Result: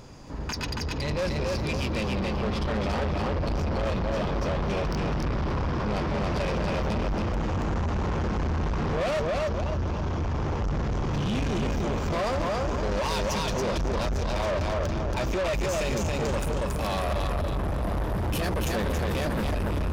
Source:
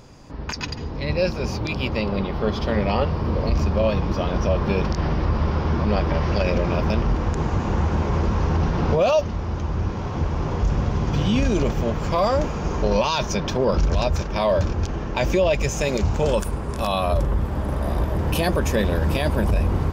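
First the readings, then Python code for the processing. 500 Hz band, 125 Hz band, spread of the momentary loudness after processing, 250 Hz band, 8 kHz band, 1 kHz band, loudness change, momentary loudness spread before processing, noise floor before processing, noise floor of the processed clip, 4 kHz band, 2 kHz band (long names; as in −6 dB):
−6.0 dB, −6.0 dB, 2 LU, −5.5 dB, −3.0 dB, −4.5 dB, −5.5 dB, 6 LU, −29 dBFS, −29 dBFS, −3.5 dB, −3.0 dB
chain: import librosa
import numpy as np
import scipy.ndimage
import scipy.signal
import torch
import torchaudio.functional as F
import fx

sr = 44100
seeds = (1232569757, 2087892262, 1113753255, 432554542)

y = fx.echo_feedback(x, sr, ms=278, feedback_pct=38, wet_db=-3)
y = 10.0 ** (-24.5 / 20.0) * np.tanh(y / 10.0 ** (-24.5 / 20.0))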